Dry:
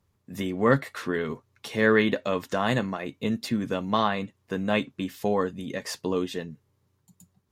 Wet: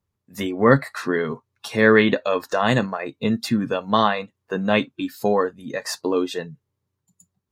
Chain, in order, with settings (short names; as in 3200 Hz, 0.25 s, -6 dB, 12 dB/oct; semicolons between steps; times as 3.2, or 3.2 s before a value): spectral noise reduction 14 dB; gain +6 dB